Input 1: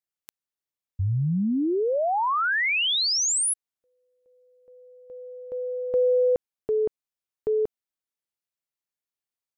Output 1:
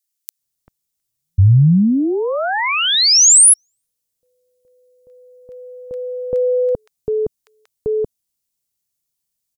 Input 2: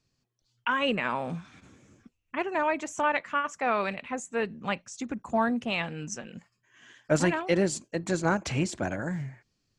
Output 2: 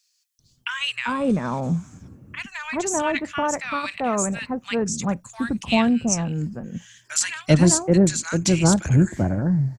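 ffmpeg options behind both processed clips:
ffmpeg -i in.wav -filter_complex "[0:a]bass=frequency=250:gain=12,treble=frequency=4000:gain=13,acrossover=split=1400[link_01][link_02];[link_01]adelay=390[link_03];[link_03][link_02]amix=inputs=2:normalize=0,volume=3.5dB" out.wav

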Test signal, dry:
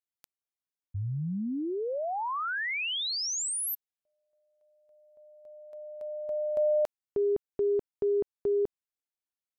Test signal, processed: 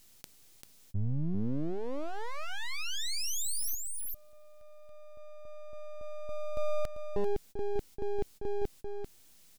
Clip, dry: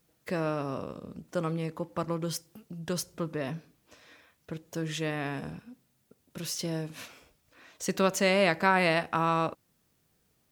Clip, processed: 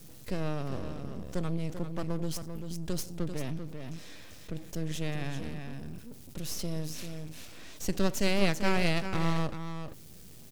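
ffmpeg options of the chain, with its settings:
ffmpeg -i in.wav -af "aecho=1:1:392:0.335,aeval=exprs='max(val(0),0)':channel_layout=same,highshelf=frequency=7300:gain=-6.5,areverse,acompressor=mode=upward:threshold=-33dB:ratio=2.5:attack=1.1:release=23:knee=2.83:detection=peak,areverse,equalizer=frequency=1200:width=0.39:gain=-12.5,volume=6dB" out.wav

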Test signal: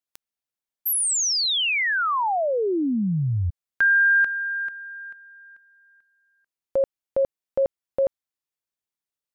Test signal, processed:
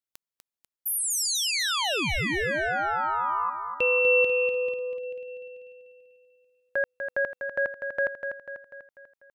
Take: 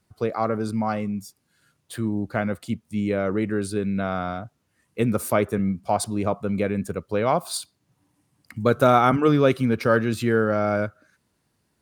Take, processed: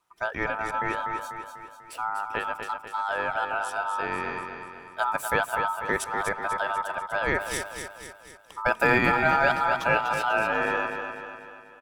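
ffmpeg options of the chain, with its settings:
ffmpeg -i in.wav -af "aeval=exprs='val(0)*sin(2*PI*1100*n/s)':channel_layout=same,aecho=1:1:246|492|738|984|1230|1476:0.447|0.232|0.121|0.0628|0.0327|0.017,volume=-2dB" out.wav

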